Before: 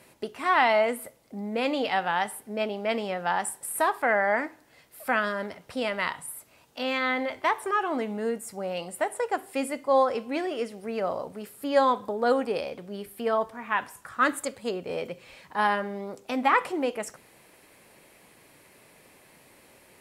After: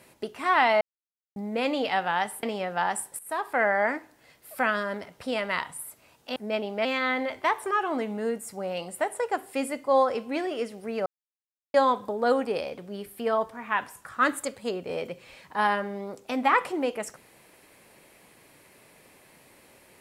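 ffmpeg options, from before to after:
ffmpeg -i in.wav -filter_complex "[0:a]asplit=9[link_01][link_02][link_03][link_04][link_05][link_06][link_07][link_08][link_09];[link_01]atrim=end=0.81,asetpts=PTS-STARTPTS,afade=type=out:start_time=0.806:duration=0.004:curve=hsin[link_10];[link_02]atrim=start=0.81:end=1.36,asetpts=PTS-STARTPTS,volume=0[link_11];[link_03]atrim=start=1.36:end=2.432,asetpts=PTS-STARTPTS,afade=type=in:duration=0.004:curve=hsin[link_12];[link_04]atrim=start=2.918:end=3.68,asetpts=PTS-STARTPTS,afade=type=out:start_time=0.758:duration=0.004:curve=hsin:silence=0.149624[link_13];[link_05]atrim=start=3.68:end=6.852,asetpts=PTS-STARTPTS,afade=type=in:duration=0.42:silence=0.149624[link_14];[link_06]atrim=start=2.428:end=2.922[link_15];[link_07]atrim=start=6.848:end=11.06,asetpts=PTS-STARTPTS,afade=type=out:start_time=4.208:duration=0.004:curve=hsin[link_16];[link_08]atrim=start=11.06:end=11.74,asetpts=PTS-STARTPTS,volume=0[link_17];[link_09]atrim=start=11.74,asetpts=PTS-STARTPTS,afade=type=in:duration=0.004:curve=hsin[link_18];[link_10][link_11][link_12]concat=n=3:v=0:a=1[link_19];[link_13][link_14]concat=n=2:v=0:a=1[link_20];[link_19][link_20]acrossfade=duration=0.004:curve1=hsin:curve2=hsin[link_21];[link_21][link_15]acrossfade=duration=0.004:curve1=hsin:curve2=hsin[link_22];[link_16][link_17][link_18]concat=n=3:v=0:a=1[link_23];[link_22][link_23]acrossfade=duration=0.004:curve1=hsin:curve2=hsin" out.wav

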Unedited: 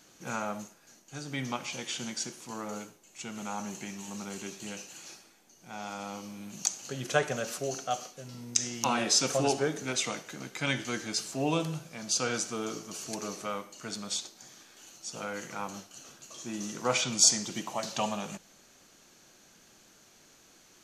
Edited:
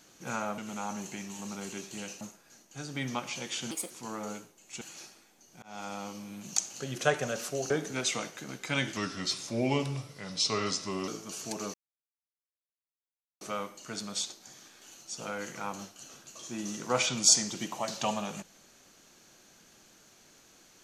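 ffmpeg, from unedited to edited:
ffmpeg -i in.wav -filter_complex "[0:a]asplit=11[link_01][link_02][link_03][link_04][link_05][link_06][link_07][link_08][link_09][link_10][link_11];[link_01]atrim=end=0.582[link_12];[link_02]atrim=start=3.268:end=4.902[link_13];[link_03]atrim=start=0.578:end=2.084[link_14];[link_04]atrim=start=2.08:end=2.36,asetpts=PTS-STARTPTS,asetrate=63945,aresample=44100[link_15];[link_05]atrim=start=2.356:end=3.272[link_16];[link_06]atrim=start=4.898:end=5.71,asetpts=PTS-STARTPTS,afade=type=out:start_time=0.808:duration=0.004:curve=hsin[link_17];[link_07]atrim=start=5.71:end=7.792,asetpts=PTS-STARTPTS,afade=type=in:duration=0.28:curve=qsin[link_18];[link_08]atrim=start=9.618:end=10.884[link_19];[link_09]atrim=start=10.88:end=12.7,asetpts=PTS-STARTPTS,asetrate=37926,aresample=44100[link_20];[link_10]atrim=start=12.696:end=13.36,asetpts=PTS-STARTPTS,afade=type=out:start_time=0.66:duration=0.004:curve=hsin,apad=pad_dur=1.67[link_21];[link_11]atrim=start=13.36,asetpts=PTS-STARTPTS,afade=type=in:duration=0.004:curve=hsin[link_22];[link_12][link_13]acrossfade=duration=0.004:curve1=hsin:curve2=hsin[link_23];[link_23][link_14]acrossfade=duration=0.004:curve1=hsin:curve2=hsin[link_24];[link_24][link_15]acrossfade=duration=0.004:curve1=hsin:curve2=hsin[link_25];[link_25][link_16]acrossfade=duration=0.004:curve1=hsin:curve2=hsin[link_26];[link_17][link_18]concat=n=2:v=0:a=1[link_27];[link_26][link_27]acrossfade=duration=0.004:curve1=hsin:curve2=hsin[link_28];[link_28][link_19]acrossfade=duration=0.004:curve1=hsin:curve2=hsin[link_29];[link_29][link_20]acrossfade=duration=0.004:curve1=hsin:curve2=hsin[link_30];[link_21][link_22]concat=n=2:v=0:a=1[link_31];[link_30][link_31]acrossfade=duration=0.004:curve1=hsin:curve2=hsin" out.wav

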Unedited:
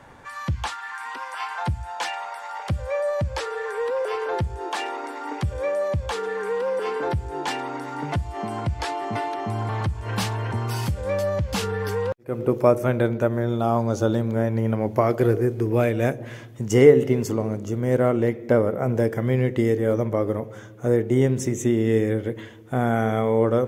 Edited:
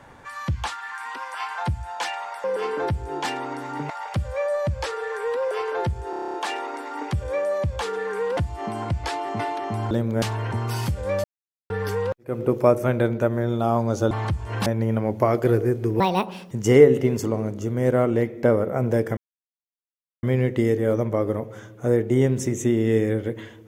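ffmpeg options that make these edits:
ffmpeg -i in.wav -filter_complex "[0:a]asplit=21[link_01][link_02][link_03][link_04][link_05][link_06][link_07][link_08][link_09][link_10][link_11][link_12][link_13][link_14][link_15][link_16][link_17][link_18][link_19][link_20][link_21];[link_01]atrim=end=2.442[link_22];[link_02]atrim=start=6.668:end=8.132[link_23];[link_03]atrim=start=2.438:end=4.672[link_24];[link_04]atrim=start=4.638:end=4.672[link_25];[link_05]atrim=start=4.638:end=4.672[link_26];[link_06]atrim=start=4.638:end=4.672[link_27];[link_07]atrim=start=4.638:end=4.672[link_28];[link_08]atrim=start=4.638:end=4.672[link_29];[link_09]atrim=start=4.638:end=4.672[link_30];[link_10]atrim=start=4.638:end=4.672[link_31];[link_11]atrim=start=4.638:end=6.672[link_32];[link_12]atrim=start=8.128:end=9.672[link_33];[link_13]atrim=start=14.108:end=14.422[link_34];[link_14]atrim=start=10.218:end=11.24,asetpts=PTS-STARTPTS,afade=type=out:start_time=1.018:duration=0.004:curve=hsin[link_35];[link_15]atrim=start=11.24:end=11.7,asetpts=PTS-STARTPTS,volume=0[link_36];[link_16]atrim=start=11.7:end=14.112,asetpts=PTS-STARTPTS,afade=type=in:duration=0.004:curve=hsin[link_37];[link_17]atrim=start=9.668:end=10.222[link_38];[link_18]atrim=start=14.418:end=15.764[link_39];[link_19]atrim=start=15.76:end=16.57,asetpts=PTS-STARTPTS,asetrate=70119,aresample=44100,atrim=end_sample=22466,asetpts=PTS-STARTPTS[link_40];[link_20]atrim=start=16.566:end=19.23,asetpts=PTS-STARTPTS,afade=type=out:start_time=2.66:duration=0.004:curve=hsin,apad=pad_dur=1.06[link_41];[link_21]atrim=start=19.23,asetpts=PTS-STARTPTS,afade=type=in:duration=0.004:curve=hsin[link_42];[link_22][link_23]acrossfade=duration=0.004:curve1=hsin:curve2=hsin[link_43];[link_43][link_24]acrossfade=duration=0.004:curve1=hsin:curve2=hsin[link_44];[link_44][link_25]acrossfade=duration=0.004:curve1=hsin:curve2=hsin[link_45];[link_45][link_26]acrossfade=duration=0.004:curve1=hsin:curve2=hsin[link_46];[link_46][link_27]acrossfade=duration=0.004:curve1=hsin:curve2=hsin[link_47];[link_47][link_28]acrossfade=duration=0.004:curve1=hsin:curve2=hsin[link_48];[link_48][link_29]acrossfade=duration=0.004:curve1=hsin:curve2=hsin[link_49];[link_49][link_30]acrossfade=duration=0.004:curve1=hsin:curve2=hsin[link_50];[link_50][link_31]acrossfade=duration=0.004:curve1=hsin:curve2=hsin[link_51];[link_51][link_32]acrossfade=duration=0.004:curve1=hsin:curve2=hsin[link_52];[link_52][link_33]acrossfade=duration=0.004:curve1=hsin:curve2=hsin[link_53];[link_53][link_34]acrossfade=duration=0.004:curve1=hsin:curve2=hsin[link_54];[link_35][link_36][link_37]concat=n=3:v=0:a=1[link_55];[link_54][link_55]acrossfade=duration=0.004:curve1=hsin:curve2=hsin[link_56];[link_56][link_38]acrossfade=duration=0.004:curve1=hsin:curve2=hsin[link_57];[link_57][link_39]acrossfade=duration=0.004:curve1=hsin:curve2=hsin[link_58];[link_58][link_40]acrossfade=duration=0.004:curve1=hsin:curve2=hsin[link_59];[link_41][link_42]concat=n=2:v=0:a=1[link_60];[link_59][link_60]acrossfade=duration=0.004:curve1=hsin:curve2=hsin" out.wav

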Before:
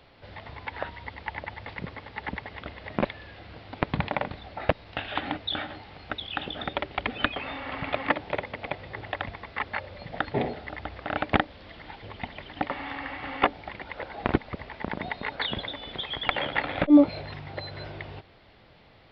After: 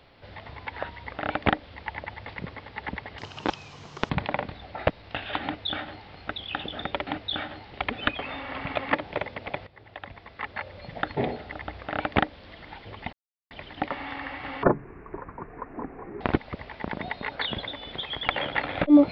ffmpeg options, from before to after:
ffmpeg -i in.wav -filter_complex "[0:a]asplit=11[link_01][link_02][link_03][link_04][link_05][link_06][link_07][link_08][link_09][link_10][link_11];[link_01]atrim=end=1.102[link_12];[link_02]atrim=start=10.968:end=11.572[link_13];[link_03]atrim=start=1.098:end=2.584[link_14];[link_04]atrim=start=2.58:end=3.92,asetpts=PTS-STARTPTS,asetrate=64386,aresample=44100,atrim=end_sample=40475,asetpts=PTS-STARTPTS[link_15];[link_05]atrim=start=3.916:end=6.892[link_16];[link_06]atrim=start=5.258:end=5.912[link_17];[link_07]atrim=start=6.888:end=8.84,asetpts=PTS-STARTPTS,afade=type=out:start_time=1.948:duration=0.004:curve=hsin:silence=0.149624[link_18];[link_08]atrim=start=8.84:end=12.3,asetpts=PTS-STARTPTS,afade=type=in:duration=1.26:silence=0.149624,afade=type=out:start_time=3.456:duration=0.004:curve=hsin,apad=pad_dur=0.38[link_19];[link_09]atrim=start=12.3:end=13.424,asetpts=PTS-STARTPTS,afade=type=in:duration=0.004:curve=hsin[link_20];[link_10]atrim=start=13.42:end=14.21,asetpts=PTS-STARTPTS,asetrate=22050,aresample=44100[link_21];[link_11]atrim=start=14.206[link_22];[link_12][link_13]acrossfade=duration=0.004:curve1=hsin:curve2=hsin[link_23];[link_23][link_14]acrossfade=duration=0.004:curve1=hsin:curve2=hsin[link_24];[link_24][link_15]acrossfade=duration=0.004:curve1=hsin:curve2=hsin[link_25];[link_25][link_16]acrossfade=duration=0.004:curve1=hsin:curve2=hsin[link_26];[link_26][link_17]acrossfade=duration=0.004:curve1=hsin:curve2=hsin[link_27];[link_18][link_19][link_20]concat=n=3:v=0:a=1[link_28];[link_27][link_28]acrossfade=duration=0.004:curve1=hsin:curve2=hsin[link_29];[link_29][link_21]acrossfade=duration=0.004:curve1=hsin:curve2=hsin[link_30];[link_30][link_22]acrossfade=duration=0.004:curve1=hsin:curve2=hsin" out.wav

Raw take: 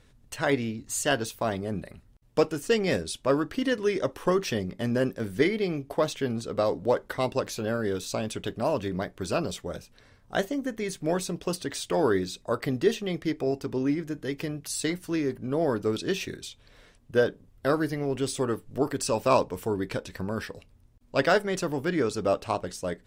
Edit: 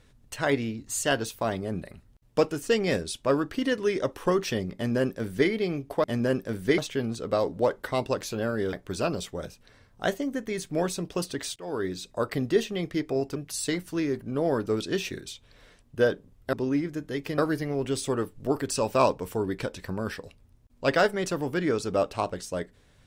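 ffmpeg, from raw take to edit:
ffmpeg -i in.wav -filter_complex "[0:a]asplit=8[link_01][link_02][link_03][link_04][link_05][link_06][link_07][link_08];[link_01]atrim=end=6.042[link_09];[link_02]atrim=start=4.748:end=5.492[link_10];[link_03]atrim=start=6.038:end=7.992[link_11];[link_04]atrim=start=9.038:end=11.87,asetpts=PTS-STARTPTS,afade=type=out:start_time=2.828:duration=0.004:curve=hsin:silence=0.0841395[link_12];[link_05]atrim=start=11.87:end=13.672,asetpts=PTS-STARTPTS,afade=type=in:duration=0.54:silence=0.0841395[link_13];[link_06]atrim=start=14.518:end=17.692[link_14];[link_07]atrim=start=13.668:end=14.522[link_15];[link_08]atrim=start=17.688[link_16];[link_09][link_10]acrossfade=duration=0.004:curve1=hsin:curve2=hsin[link_17];[link_17][link_11]acrossfade=duration=0.004:curve1=hsin:curve2=hsin[link_18];[link_12][link_13]concat=n=2:v=0:a=1[link_19];[link_18][link_19]acrossfade=duration=0.004:curve1=hsin:curve2=hsin[link_20];[link_20][link_14]acrossfade=duration=0.004:curve1=hsin:curve2=hsin[link_21];[link_21][link_15]acrossfade=duration=0.004:curve1=hsin:curve2=hsin[link_22];[link_22][link_16]acrossfade=duration=0.004:curve1=hsin:curve2=hsin" out.wav

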